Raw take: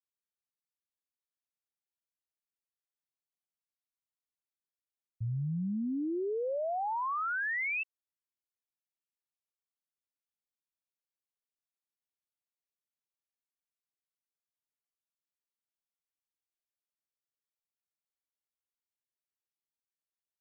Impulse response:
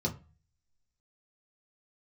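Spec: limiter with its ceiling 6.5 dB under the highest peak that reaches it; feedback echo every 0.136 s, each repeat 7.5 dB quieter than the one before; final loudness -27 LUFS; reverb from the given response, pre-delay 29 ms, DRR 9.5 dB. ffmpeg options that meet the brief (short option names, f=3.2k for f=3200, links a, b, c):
-filter_complex "[0:a]alimiter=level_in=12.5dB:limit=-24dB:level=0:latency=1,volume=-12.5dB,aecho=1:1:136|272|408|544|680:0.422|0.177|0.0744|0.0312|0.0131,asplit=2[a][b];[1:a]atrim=start_sample=2205,adelay=29[c];[b][c]afir=irnorm=-1:irlink=0,volume=-14.5dB[d];[a][d]amix=inputs=2:normalize=0,volume=10.5dB"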